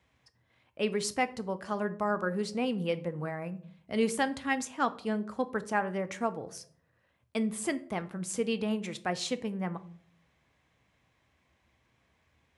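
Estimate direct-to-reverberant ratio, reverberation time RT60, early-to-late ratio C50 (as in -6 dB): 11.0 dB, 0.60 s, 17.0 dB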